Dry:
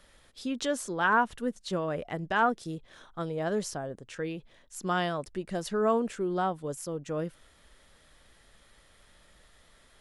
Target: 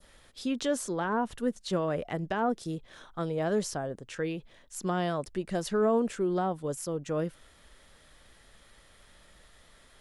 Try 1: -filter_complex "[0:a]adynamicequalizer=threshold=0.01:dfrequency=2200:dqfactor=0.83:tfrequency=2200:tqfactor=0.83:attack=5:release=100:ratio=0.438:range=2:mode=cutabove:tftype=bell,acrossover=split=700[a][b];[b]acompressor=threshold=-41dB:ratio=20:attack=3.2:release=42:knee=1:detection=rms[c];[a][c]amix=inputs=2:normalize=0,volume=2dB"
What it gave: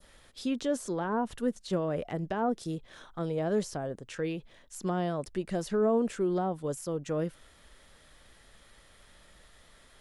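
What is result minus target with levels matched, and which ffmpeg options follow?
compressor: peak gain reduction +6 dB
-filter_complex "[0:a]adynamicequalizer=threshold=0.01:dfrequency=2200:dqfactor=0.83:tfrequency=2200:tqfactor=0.83:attack=5:release=100:ratio=0.438:range=2:mode=cutabove:tftype=bell,acrossover=split=700[a][b];[b]acompressor=threshold=-34.5dB:ratio=20:attack=3.2:release=42:knee=1:detection=rms[c];[a][c]amix=inputs=2:normalize=0,volume=2dB"

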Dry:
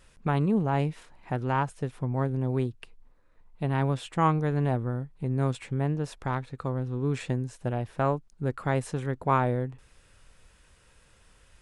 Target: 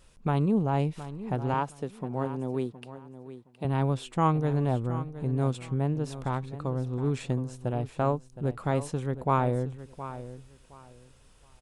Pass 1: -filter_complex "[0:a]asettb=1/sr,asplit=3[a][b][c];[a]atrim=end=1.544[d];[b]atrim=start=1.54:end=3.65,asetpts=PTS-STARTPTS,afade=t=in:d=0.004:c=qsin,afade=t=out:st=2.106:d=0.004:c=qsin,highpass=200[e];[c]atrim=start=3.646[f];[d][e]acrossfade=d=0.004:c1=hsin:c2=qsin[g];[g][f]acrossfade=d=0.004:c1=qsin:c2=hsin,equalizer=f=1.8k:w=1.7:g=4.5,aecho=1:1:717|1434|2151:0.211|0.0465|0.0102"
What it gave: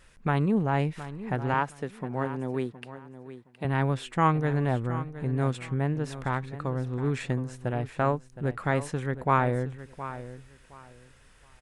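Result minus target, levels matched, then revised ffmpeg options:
2000 Hz band +8.0 dB
-filter_complex "[0:a]asettb=1/sr,asplit=3[a][b][c];[a]atrim=end=1.544[d];[b]atrim=start=1.54:end=3.65,asetpts=PTS-STARTPTS,afade=t=in:d=0.004:c=qsin,afade=t=out:st=2.106:d=0.004:c=qsin,highpass=200[e];[c]atrim=start=3.646[f];[d][e]acrossfade=d=0.004:c1=hsin:c2=qsin[g];[g][f]acrossfade=d=0.004:c1=qsin:c2=hsin,equalizer=f=1.8k:w=1.7:g=-6.5,aecho=1:1:717|1434|2151:0.211|0.0465|0.0102"

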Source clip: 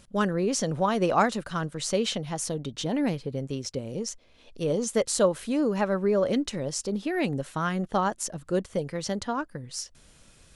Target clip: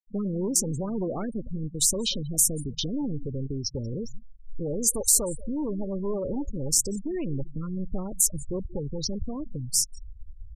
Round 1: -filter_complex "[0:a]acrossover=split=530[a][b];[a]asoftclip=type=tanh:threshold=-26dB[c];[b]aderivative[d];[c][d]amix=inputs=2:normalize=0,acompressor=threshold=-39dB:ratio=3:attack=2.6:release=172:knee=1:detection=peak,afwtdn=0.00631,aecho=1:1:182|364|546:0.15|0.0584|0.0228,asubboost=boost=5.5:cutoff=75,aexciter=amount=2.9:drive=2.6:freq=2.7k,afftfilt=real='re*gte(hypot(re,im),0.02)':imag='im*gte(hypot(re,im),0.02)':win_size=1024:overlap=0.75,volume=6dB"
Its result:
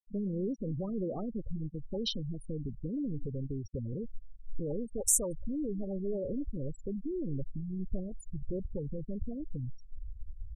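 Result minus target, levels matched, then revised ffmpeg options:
compressor: peak gain reduction +5 dB
-filter_complex "[0:a]acrossover=split=530[a][b];[a]asoftclip=type=tanh:threshold=-26dB[c];[b]aderivative[d];[c][d]amix=inputs=2:normalize=0,acompressor=threshold=-31.5dB:ratio=3:attack=2.6:release=172:knee=1:detection=peak,afwtdn=0.00631,aecho=1:1:182|364|546:0.15|0.0584|0.0228,asubboost=boost=5.5:cutoff=75,aexciter=amount=2.9:drive=2.6:freq=2.7k,afftfilt=real='re*gte(hypot(re,im),0.02)':imag='im*gte(hypot(re,im),0.02)':win_size=1024:overlap=0.75,volume=6dB"

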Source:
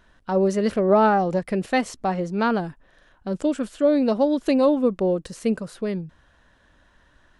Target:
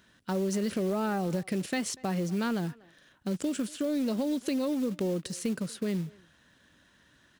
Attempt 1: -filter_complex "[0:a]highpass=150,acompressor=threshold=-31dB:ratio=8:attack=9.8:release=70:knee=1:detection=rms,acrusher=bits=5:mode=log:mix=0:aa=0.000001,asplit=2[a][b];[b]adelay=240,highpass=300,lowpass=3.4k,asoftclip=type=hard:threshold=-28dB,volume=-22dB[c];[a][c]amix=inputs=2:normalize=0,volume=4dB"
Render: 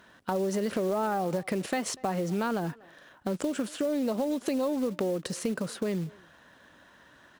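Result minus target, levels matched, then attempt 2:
1000 Hz band +4.5 dB
-filter_complex "[0:a]highpass=150,equalizer=f=800:t=o:w=2.4:g=-12.5,acompressor=threshold=-31dB:ratio=8:attack=9.8:release=70:knee=1:detection=rms,acrusher=bits=5:mode=log:mix=0:aa=0.000001,asplit=2[a][b];[b]adelay=240,highpass=300,lowpass=3.4k,asoftclip=type=hard:threshold=-28dB,volume=-22dB[c];[a][c]amix=inputs=2:normalize=0,volume=4dB"

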